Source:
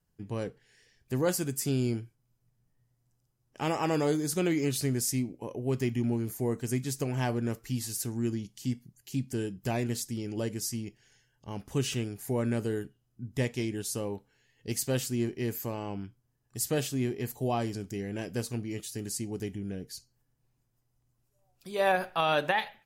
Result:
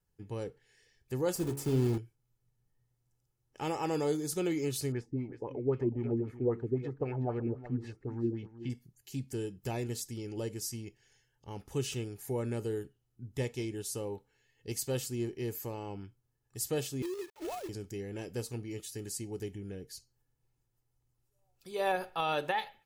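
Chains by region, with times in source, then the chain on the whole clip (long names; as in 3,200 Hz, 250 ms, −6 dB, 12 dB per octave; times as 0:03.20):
0:01.35–0:01.98: one scale factor per block 3 bits + tilt shelving filter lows +6 dB, about 1,100 Hz + hum removal 70.09 Hz, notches 38
0:04.92–0:08.70: auto-filter low-pass sine 3.8 Hz 270–2,400 Hz + single-tap delay 372 ms −14.5 dB
0:17.02–0:17.69: three sine waves on the formant tracks + tuned comb filter 210 Hz, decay 0.73 s, mix 40% + log-companded quantiser 4 bits
whole clip: dynamic equaliser 1,800 Hz, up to −4 dB, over −48 dBFS, Q 1.3; comb filter 2.3 ms, depth 39%; level −4.5 dB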